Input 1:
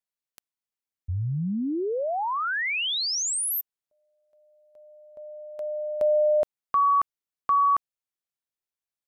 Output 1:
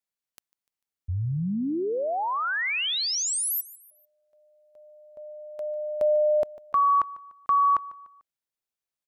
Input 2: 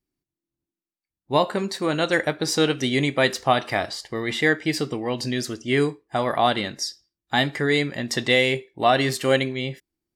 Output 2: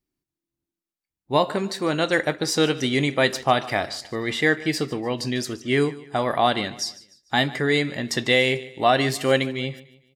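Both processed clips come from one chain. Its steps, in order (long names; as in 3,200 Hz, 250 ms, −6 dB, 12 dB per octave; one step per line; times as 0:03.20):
repeating echo 148 ms, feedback 41%, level −19 dB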